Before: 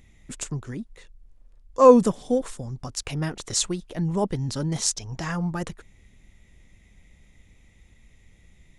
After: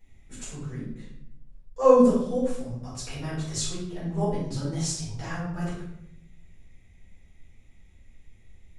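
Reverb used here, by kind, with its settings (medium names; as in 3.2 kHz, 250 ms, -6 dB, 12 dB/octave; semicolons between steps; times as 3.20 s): simulated room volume 200 m³, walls mixed, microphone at 4.7 m; trim -17.5 dB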